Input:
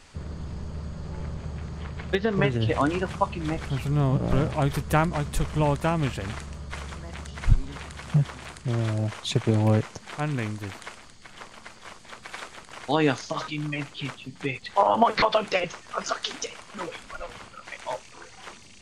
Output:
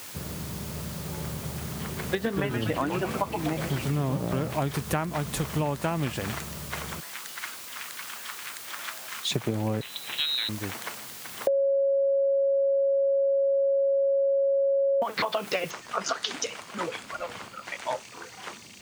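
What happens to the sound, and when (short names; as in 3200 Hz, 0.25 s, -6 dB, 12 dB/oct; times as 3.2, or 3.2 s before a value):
1.5–4.21 frequency-shifting echo 0.123 s, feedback 61%, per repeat -150 Hz, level -7 dB
7–9.31 HPF 1100 Hz 24 dB/oct
9.81–10.49 inverted band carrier 4000 Hz
11.47–15.02 bleep 551 Hz -9 dBFS
15.71 noise floor step -45 dB -64 dB
whole clip: HPF 120 Hz 12 dB/oct; compressor 6:1, threshold -27 dBFS; gain +3 dB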